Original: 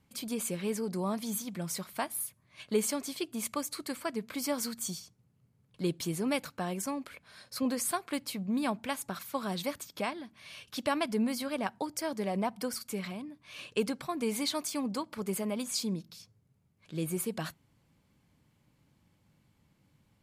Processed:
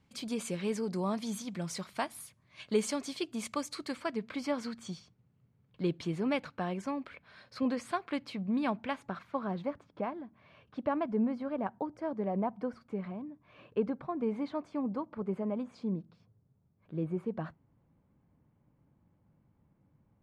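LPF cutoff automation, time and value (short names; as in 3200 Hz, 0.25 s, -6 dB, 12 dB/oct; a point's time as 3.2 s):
3.68 s 6300 Hz
4.56 s 3000 Hz
8.74 s 3000 Hz
9.76 s 1100 Hz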